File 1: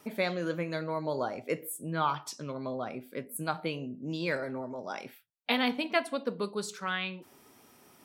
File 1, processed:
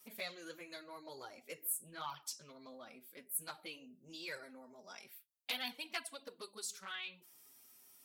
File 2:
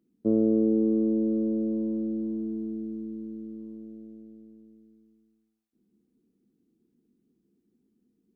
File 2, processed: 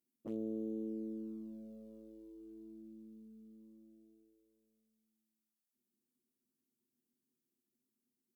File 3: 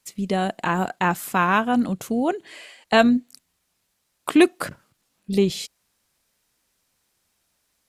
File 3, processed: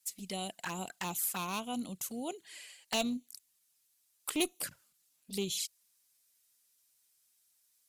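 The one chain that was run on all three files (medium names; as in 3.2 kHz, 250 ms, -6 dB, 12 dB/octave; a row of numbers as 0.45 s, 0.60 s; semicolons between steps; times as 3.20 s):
one-sided clip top -14 dBFS; touch-sensitive flanger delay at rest 8.1 ms, full sweep at -19 dBFS; pre-emphasis filter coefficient 0.9; trim +2.5 dB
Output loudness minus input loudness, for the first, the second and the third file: -11.0 LU, -18.0 LU, -15.0 LU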